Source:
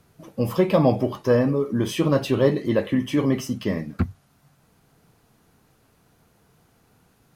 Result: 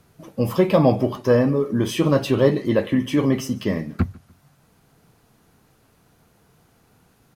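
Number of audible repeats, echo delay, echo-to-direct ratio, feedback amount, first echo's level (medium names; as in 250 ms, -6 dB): 2, 147 ms, -23.5 dB, 37%, -24.0 dB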